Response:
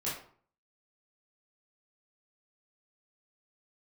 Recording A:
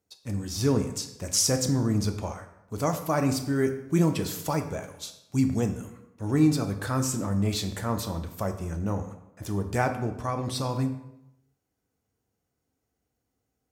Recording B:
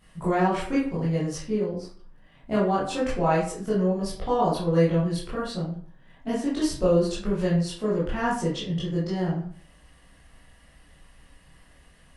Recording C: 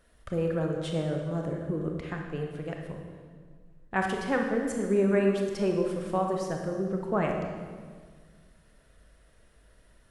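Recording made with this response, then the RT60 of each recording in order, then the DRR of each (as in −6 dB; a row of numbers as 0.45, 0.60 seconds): B; 0.85, 0.50, 1.7 seconds; 5.5, −9.0, 1.5 decibels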